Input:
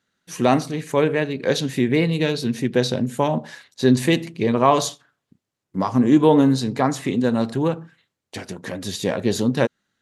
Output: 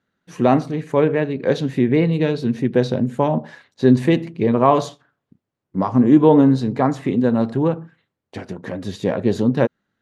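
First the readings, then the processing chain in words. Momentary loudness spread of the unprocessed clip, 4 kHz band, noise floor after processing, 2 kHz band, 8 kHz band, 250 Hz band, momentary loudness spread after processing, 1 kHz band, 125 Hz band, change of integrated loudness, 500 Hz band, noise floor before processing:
14 LU, -7.0 dB, -80 dBFS, -2.5 dB, under -10 dB, +3.0 dB, 13 LU, +1.0 dB, +3.0 dB, +2.5 dB, +2.5 dB, -82 dBFS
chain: low-pass 1.2 kHz 6 dB/octave; trim +3 dB

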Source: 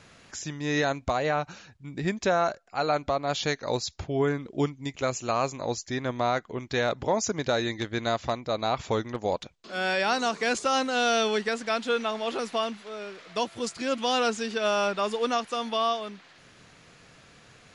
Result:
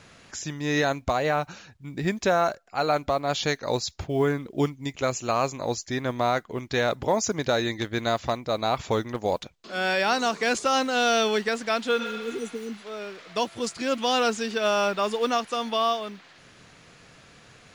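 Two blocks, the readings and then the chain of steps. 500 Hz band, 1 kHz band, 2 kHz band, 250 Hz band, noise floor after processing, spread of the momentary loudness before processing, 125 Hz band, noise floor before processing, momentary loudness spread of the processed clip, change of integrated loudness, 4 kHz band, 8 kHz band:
+2.0 dB, +2.0 dB, +2.0 dB, +2.0 dB, -53 dBFS, 8 LU, +2.0 dB, -55 dBFS, 10 LU, +2.0 dB, +2.0 dB, +2.0 dB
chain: modulation noise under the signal 35 dB; spectral replace 12.02–12.71 s, 480–5800 Hz both; trim +2 dB

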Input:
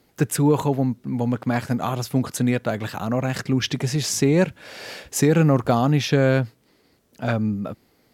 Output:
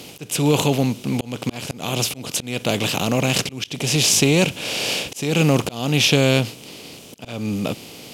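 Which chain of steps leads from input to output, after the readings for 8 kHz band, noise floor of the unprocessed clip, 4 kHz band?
+7.5 dB, -62 dBFS, +11.0 dB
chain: spectral levelling over time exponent 0.6; resonant high shelf 2.1 kHz +6.5 dB, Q 3; slow attack 313 ms; trim -1 dB

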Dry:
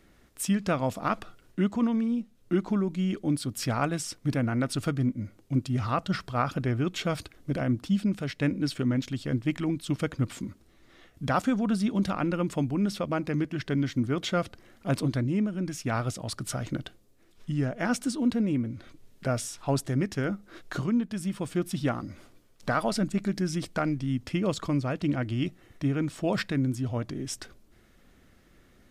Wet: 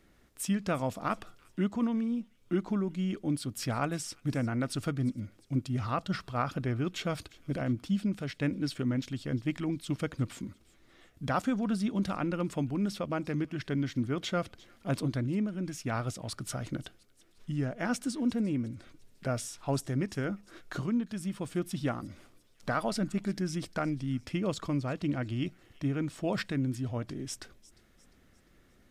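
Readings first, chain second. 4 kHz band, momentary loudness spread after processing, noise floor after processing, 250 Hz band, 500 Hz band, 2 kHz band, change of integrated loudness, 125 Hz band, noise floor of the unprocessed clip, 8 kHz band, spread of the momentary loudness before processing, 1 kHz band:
-4.0 dB, 8 LU, -63 dBFS, -4.0 dB, -4.0 dB, -4.0 dB, -4.0 dB, -4.0 dB, -60 dBFS, -4.0 dB, 8 LU, -4.0 dB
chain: feedback echo behind a high-pass 351 ms, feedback 45%, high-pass 2.7 kHz, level -19 dB; trim -4 dB

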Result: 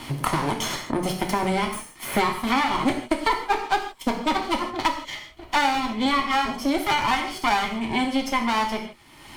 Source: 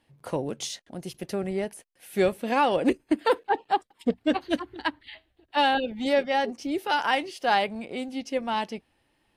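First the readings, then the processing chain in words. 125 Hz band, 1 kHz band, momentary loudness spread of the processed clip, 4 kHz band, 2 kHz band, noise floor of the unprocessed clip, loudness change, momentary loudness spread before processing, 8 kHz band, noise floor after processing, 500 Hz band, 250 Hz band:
+7.5 dB, +4.0 dB, 6 LU, +5.0 dB, +4.5 dB, -71 dBFS, +3.0 dB, 12 LU, +7.5 dB, -48 dBFS, -2.5 dB, +3.5 dB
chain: comb filter that takes the minimum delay 0.93 ms; bass shelf 110 Hz -5.5 dB; wow and flutter 15 cents; gated-style reverb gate 180 ms falling, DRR 2 dB; three bands compressed up and down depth 100%; trim +3 dB

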